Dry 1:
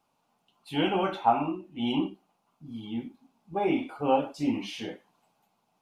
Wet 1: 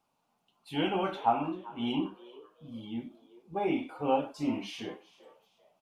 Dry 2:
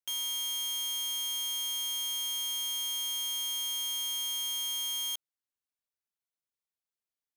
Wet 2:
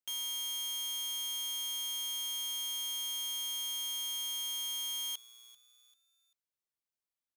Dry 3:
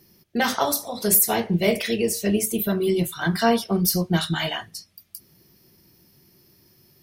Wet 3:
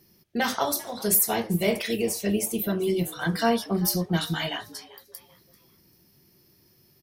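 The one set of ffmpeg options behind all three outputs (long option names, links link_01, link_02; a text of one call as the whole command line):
ffmpeg -i in.wav -filter_complex "[0:a]asplit=4[link_01][link_02][link_03][link_04];[link_02]adelay=391,afreqshift=120,volume=-20dB[link_05];[link_03]adelay=782,afreqshift=240,volume=-29.1dB[link_06];[link_04]adelay=1173,afreqshift=360,volume=-38.2dB[link_07];[link_01][link_05][link_06][link_07]amix=inputs=4:normalize=0,volume=-3.5dB" out.wav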